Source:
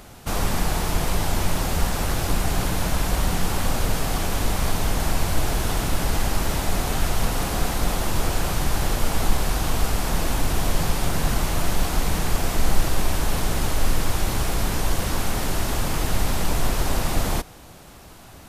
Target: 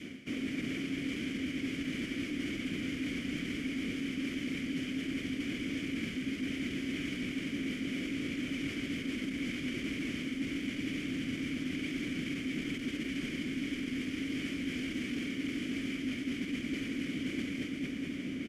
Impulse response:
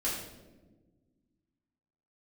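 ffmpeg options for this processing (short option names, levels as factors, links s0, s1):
-filter_complex "[0:a]adynamicequalizer=threshold=0.00501:dfrequency=800:dqfactor=1.7:tfrequency=800:tqfactor=1.7:attack=5:release=100:ratio=0.375:range=2.5:mode=cutabove:tftype=bell,asplit=2[s0][s1];[s1]aecho=0:1:229|458|687|916|1145|1374|1603:0.398|0.231|0.134|0.0777|0.0451|0.0261|0.0152[s2];[s0][s2]amix=inputs=2:normalize=0,acontrast=81,highpass=f=84:p=1,asplit=3[s3][s4][s5];[s4]asetrate=22050,aresample=44100,atempo=2,volume=0.891[s6];[s5]asetrate=35002,aresample=44100,atempo=1.25992,volume=0.891[s7];[s3][s6][s7]amix=inputs=3:normalize=0,asplit=3[s8][s9][s10];[s8]bandpass=f=270:t=q:w=8,volume=1[s11];[s9]bandpass=f=2290:t=q:w=8,volume=0.501[s12];[s10]bandpass=f=3010:t=q:w=8,volume=0.355[s13];[s11][s12][s13]amix=inputs=3:normalize=0,asplit=2[s14][s15];[s15]adelay=1108,volume=0.178,highshelf=f=4000:g=-24.9[s16];[s14][s16]amix=inputs=2:normalize=0,areverse,acompressor=threshold=0.00794:ratio=6,areverse,equalizer=f=3900:t=o:w=0.4:g=-10.5,volume=2.51"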